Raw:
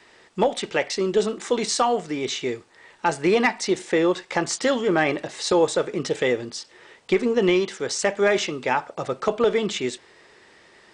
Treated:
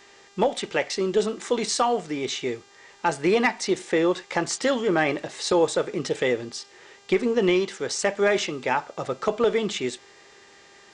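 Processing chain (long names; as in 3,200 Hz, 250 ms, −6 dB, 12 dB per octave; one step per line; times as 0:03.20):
hum with harmonics 400 Hz, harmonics 19, −54 dBFS −2 dB per octave
level −1.5 dB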